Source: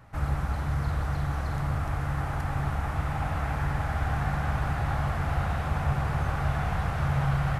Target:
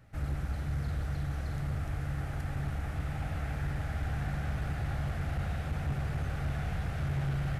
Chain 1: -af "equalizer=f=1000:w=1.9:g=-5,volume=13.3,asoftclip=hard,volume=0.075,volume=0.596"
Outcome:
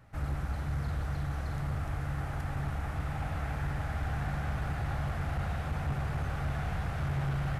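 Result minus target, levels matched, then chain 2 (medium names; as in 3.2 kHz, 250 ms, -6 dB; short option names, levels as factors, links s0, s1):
1 kHz band +3.5 dB
-af "equalizer=f=1000:w=1.9:g=-12.5,volume=13.3,asoftclip=hard,volume=0.075,volume=0.596"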